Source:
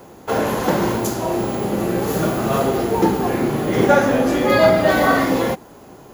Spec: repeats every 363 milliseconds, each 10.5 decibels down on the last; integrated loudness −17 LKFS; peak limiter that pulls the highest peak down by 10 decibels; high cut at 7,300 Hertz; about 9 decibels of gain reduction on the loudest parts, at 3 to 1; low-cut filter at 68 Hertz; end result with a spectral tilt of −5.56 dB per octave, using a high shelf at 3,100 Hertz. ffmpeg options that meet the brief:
ffmpeg -i in.wav -af "highpass=68,lowpass=7300,highshelf=frequency=3100:gain=-4.5,acompressor=threshold=-21dB:ratio=3,alimiter=limit=-20.5dB:level=0:latency=1,aecho=1:1:363|726|1089:0.299|0.0896|0.0269,volume=12dB" out.wav

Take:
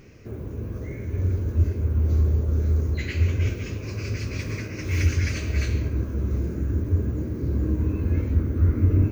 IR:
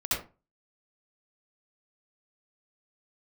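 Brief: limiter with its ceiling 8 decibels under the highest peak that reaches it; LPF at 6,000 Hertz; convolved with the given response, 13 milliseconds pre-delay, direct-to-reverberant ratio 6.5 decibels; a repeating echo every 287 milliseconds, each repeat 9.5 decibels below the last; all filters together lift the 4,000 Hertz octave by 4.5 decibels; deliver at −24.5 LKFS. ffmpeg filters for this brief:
-filter_complex "[0:a]lowpass=6000,equalizer=frequency=4000:width_type=o:gain=7,alimiter=limit=-16.5dB:level=0:latency=1,aecho=1:1:287|574|861|1148:0.335|0.111|0.0365|0.012,asplit=2[link_01][link_02];[1:a]atrim=start_sample=2205,adelay=13[link_03];[link_02][link_03]afir=irnorm=-1:irlink=0,volume=-15dB[link_04];[link_01][link_04]amix=inputs=2:normalize=0,volume=-1.5dB"

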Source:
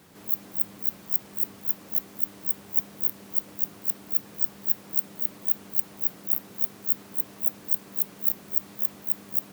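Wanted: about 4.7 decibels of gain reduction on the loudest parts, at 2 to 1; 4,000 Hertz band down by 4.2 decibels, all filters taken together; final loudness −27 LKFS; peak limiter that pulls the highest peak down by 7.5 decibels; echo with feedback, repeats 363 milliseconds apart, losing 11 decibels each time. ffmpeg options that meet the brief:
ffmpeg -i in.wav -af "equalizer=frequency=4000:width_type=o:gain=-5.5,acompressor=threshold=-26dB:ratio=2,alimiter=limit=-15dB:level=0:latency=1,aecho=1:1:363|726|1089:0.282|0.0789|0.0221,volume=5dB" out.wav

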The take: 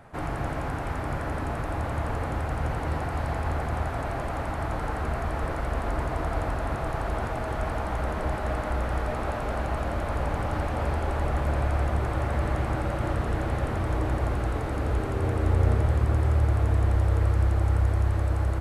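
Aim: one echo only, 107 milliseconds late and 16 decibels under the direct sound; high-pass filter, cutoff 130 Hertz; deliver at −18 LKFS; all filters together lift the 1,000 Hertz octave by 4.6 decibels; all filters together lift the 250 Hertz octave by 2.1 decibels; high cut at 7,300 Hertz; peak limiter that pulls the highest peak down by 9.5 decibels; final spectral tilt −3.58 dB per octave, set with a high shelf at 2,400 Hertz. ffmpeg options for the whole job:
ffmpeg -i in.wav -af "highpass=130,lowpass=7300,equalizer=frequency=250:width_type=o:gain=3,equalizer=frequency=1000:width_type=o:gain=6.5,highshelf=frequency=2400:gain=-4,alimiter=limit=-22.5dB:level=0:latency=1,aecho=1:1:107:0.158,volume=13.5dB" out.wav

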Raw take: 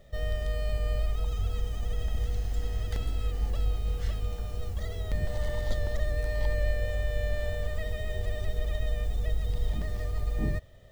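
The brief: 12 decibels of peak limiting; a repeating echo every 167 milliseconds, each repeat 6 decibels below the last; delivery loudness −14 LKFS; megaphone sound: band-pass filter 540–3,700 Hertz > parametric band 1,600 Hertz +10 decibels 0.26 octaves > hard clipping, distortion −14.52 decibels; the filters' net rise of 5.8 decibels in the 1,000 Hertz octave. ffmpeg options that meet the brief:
ffmpeg -i in.wav -af "equalizer=frequency=1000:width_type=o:gain=8,alimiter=level_in=3dB:limit=-24dB:level=0:latency=1,volume=-3dB,highpass=540,lowpass=3700,equalizer=frequency=1600:width_type=o:width=0.26:gain=10,aecho=1:1:167|334|501|668|835|1002:0.501|0.251|0.125|0.0626|0.0313|0.0157,asoftclip=type=hard:threshold=-38dB,volume=29.5dB" out.wav

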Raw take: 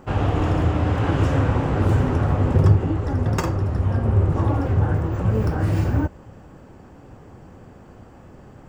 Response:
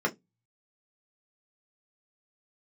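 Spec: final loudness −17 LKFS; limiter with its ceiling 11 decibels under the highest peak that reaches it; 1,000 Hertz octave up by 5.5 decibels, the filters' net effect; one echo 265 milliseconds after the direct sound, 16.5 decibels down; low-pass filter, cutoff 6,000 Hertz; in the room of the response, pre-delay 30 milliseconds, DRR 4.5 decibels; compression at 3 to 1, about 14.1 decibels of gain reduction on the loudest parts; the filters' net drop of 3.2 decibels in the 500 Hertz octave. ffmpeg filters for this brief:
-filter_complex "[0:a]lowpass=6000,equalizer=frequency=500:width_type=o:gain=-6.5,equalizer=frequency=1000:width_type=o:gain=9,acompressor=threshold=-30dB:ratio=3,alimiter=level_in=4dB:limit=-24dB:level=0:latency=1,volume=-4dB,aecho=1:1:265:0.15,asplit=2[link_01][link_02];[1:a]atrim=start_sample=2205,adelay=30[link_03];[link_02][link_03]afir=irnorm=-1:irlink=0,volume=-15dB[link_04];[link_01][link_04]amix=inputs=2:normalize=0,volume=19.5dB"

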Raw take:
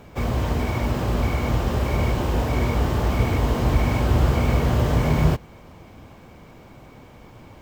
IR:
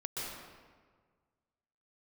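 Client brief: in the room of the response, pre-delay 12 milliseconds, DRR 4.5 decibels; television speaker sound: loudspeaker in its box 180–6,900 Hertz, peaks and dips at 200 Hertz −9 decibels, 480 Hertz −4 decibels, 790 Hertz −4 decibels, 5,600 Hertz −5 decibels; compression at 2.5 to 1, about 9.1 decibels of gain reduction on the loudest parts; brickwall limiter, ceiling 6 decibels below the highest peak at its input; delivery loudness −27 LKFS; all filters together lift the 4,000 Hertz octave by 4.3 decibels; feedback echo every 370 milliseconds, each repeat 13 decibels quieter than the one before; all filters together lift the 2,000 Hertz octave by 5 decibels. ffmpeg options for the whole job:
-filter_complex "[0:a]equalizer=frequency=2000:width_type=o:gain=5,equalizer=frequency=4000:width_type=o:gain=4.5,acompressor=threshold=-27dB:ratio=2.5,alimiter=limit=-20.5dB:level=0:latency=1,aecho=1:1:370|740|1110:0.224|0.0493|0.0108,asplit=2[link_01][link_02];[1:a]atrim=start_sample=2205,adelay=12[link_03];[link_02][link_03]afir=irnorm=-1:irlink=0,volume=-7dB[link_04];[link_01][link_04]amix=inputs=2:normalize=0,highpass=frequency=180:width=0.5412,highpass=frequency=180:width=1.3066,equalizer=frequency=200:width_type=q:width=4:gain=-9,equalizer=frequency=480:width_type=q:width=4:gain=-4,equalizer=frequency=790:width_type=q:width=4:gain=-4,equalizer=frequency=5600:width_type=q:width=4:gain=-5,lowpass=frequency=6900:width=0.5412,lowpass=frequency=6900:width=1.3066,volume=6.5dB"

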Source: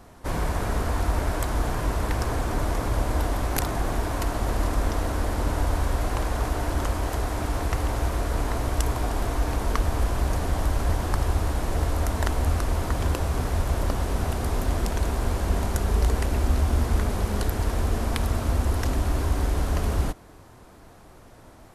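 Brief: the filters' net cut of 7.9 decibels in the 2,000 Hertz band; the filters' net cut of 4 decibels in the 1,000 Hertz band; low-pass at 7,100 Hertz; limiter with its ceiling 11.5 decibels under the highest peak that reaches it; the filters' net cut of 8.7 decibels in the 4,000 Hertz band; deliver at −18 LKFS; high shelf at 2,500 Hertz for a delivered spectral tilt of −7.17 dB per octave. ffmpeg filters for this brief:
ffmpeg -i in.wav -af "lowpass=7100,equalizer=frequency=1000:width_type=o:gain=-3,equalizer=frequency=2000:width_type=o:gain=-6.5,highshelf=frequency=2500:gain=-4.5,equalizer=frequency=4000:width_type=o:gain=-4.5,volume=14.5dB,alimiter=limit=-8dB:level=0:latency=1" out.wav

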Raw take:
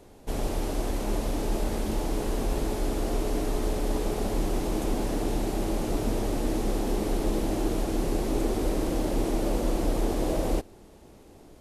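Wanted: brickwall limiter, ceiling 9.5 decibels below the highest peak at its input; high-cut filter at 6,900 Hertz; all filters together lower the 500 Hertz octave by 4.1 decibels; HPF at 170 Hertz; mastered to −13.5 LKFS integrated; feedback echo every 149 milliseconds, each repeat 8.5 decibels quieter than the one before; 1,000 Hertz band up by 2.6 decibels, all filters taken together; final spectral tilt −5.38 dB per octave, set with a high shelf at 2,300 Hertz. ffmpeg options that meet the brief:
ffmpeg -i in.wav -af "highpass=170,lowpass=6900,equalizer=frequency=500:width_type=o:gain=-7,equalizer=frequency=1000:width_type=o:gain=7,highshelf=frequency=2300:gain=-4,alimiter=level_in=5.5dB:limit=-24dB:level=0:latency=1,volume=-5.5dB,aecho=1:1:149|298|447|596:0.376|0.143|0.0543|0.0206,volume=24dB" out.wav

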